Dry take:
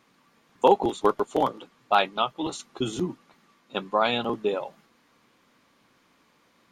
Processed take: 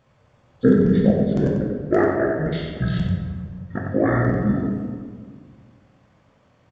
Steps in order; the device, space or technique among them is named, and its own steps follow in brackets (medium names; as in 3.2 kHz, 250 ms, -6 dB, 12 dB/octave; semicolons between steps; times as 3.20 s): monster voice (pitch shift -12 st; bass shelf 160 Hz +5 dB; delay 91 ms -6.5 dB; reverberation RT60 1.7 s, pre-delay 6 ms, DRR 0 dB)